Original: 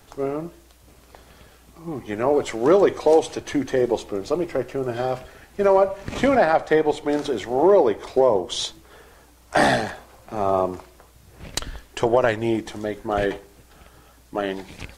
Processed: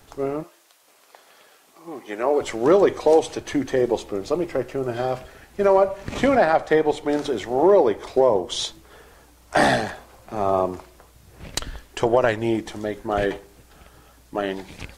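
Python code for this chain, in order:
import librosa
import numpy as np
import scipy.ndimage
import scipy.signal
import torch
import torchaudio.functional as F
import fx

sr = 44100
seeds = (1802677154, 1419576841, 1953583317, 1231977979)

y = fx.highpass(x, sr, hz=fx.line((0.42, 790.0), (2.4, 310.0)), slope=12, at=(0.42, 2.4), fade=0.02)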